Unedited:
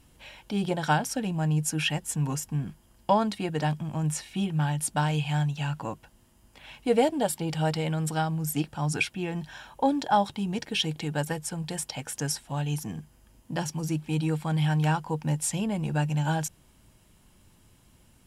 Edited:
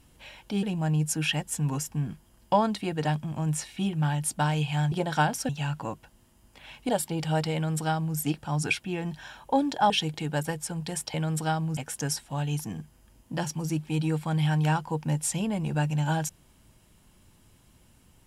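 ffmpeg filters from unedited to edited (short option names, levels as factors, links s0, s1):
-filter_complex "[0:a]asplit=8[s0][s1][s2][s3][s4][s5][s6][s7];[s0]atrim=end=0.632[s8];[s1]atrim=start=1.198:end=5.492[s9];[s2]atrim=start=0.628:end=1.202[s10];[s3]atrim=start=5.488:end=6.892[s11];[s4]atrim=start=7.188:end=10.202[s12];[s5]atrim=start=10.718:end=11.962[s13];[s6]atrim=start=7.838:end=8.472[s14];[s7]atrim=start=11.958[s15];[s8][s9]acrossfade=d=0.004:c1=hsin:c2=hsin[s16];[s16][s10]acrossfade=d=0.004:c1=hsin:c2=hsin[s17];[s17][s11]acrossfade=d=0.004:c1=hsin:c2=hsin[s18];[s18][s12]acrossfade=d=0.004:c1=hsin:c2=hsin[s19];[s19][s13]acrossfade=d=0.004:c1=hsin:c2=hsin[s20];[s20][s14]acrossfade=d=0.004:c1=hsin:c2=hsin[s21];[s21][s15]acrossfade=d=0.004:c1=hsin:c2=hsin"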